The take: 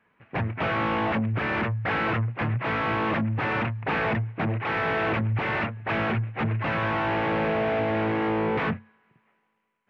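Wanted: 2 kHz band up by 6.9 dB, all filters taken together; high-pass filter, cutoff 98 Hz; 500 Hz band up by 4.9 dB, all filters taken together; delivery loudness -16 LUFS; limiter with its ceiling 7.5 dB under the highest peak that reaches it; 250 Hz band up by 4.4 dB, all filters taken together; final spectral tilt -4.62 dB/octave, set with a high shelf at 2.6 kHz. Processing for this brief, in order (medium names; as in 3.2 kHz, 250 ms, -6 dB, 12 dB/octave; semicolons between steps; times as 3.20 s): high-pass 98 Hz; peaking EQ 250 Hz +4.5 dB; peaking EQ 500 Hz +4.5 dB; peaking EQ 2 kHz +7 dB; treble shelf 2.6 kHz +3 dB; trim +10 dB; peak limiter -8.5 dBFS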